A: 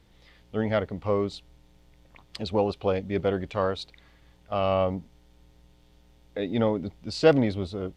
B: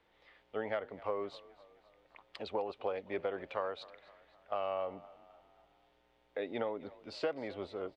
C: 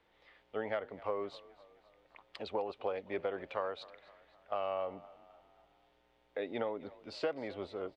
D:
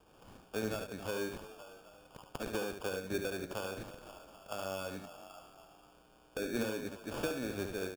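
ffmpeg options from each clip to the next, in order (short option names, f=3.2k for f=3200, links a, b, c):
-filter_complex "[0:a]acrossover=split=380 3100:gain=0.1 1 0.141[a][b][c];[a][b][c]amix=inputs=3:normalize=0,acompressor=threshold=-29dB:ratio=12,asplit=5[d][e][f][g][h];[e]adelay=258,afreqshift=34,volume=-20dB[i];[f]adelay=516,afreqshift=68,volume=-25.7dB[j];[g]adelay=774,afreqshift=102,volume=-31.4dB[k];[h]adelay=1032,afreqshift=136,volume=-37dB[l];[d][i][j][k][l]amix=inputs=5:normalize=0,volume=-2.5dB"
-af anull
-filter_complex "[0:a]acrossover=split=350|3000[a][b][c];[b]acompressor=threshold=-54dB:ratio=4[d];[a][d][c]amix=inputs=3:normalize=0,acrusher=samples=22:mix=1:aa=0.000001,aecho=1:1:73:0.473,volume=7.5dB"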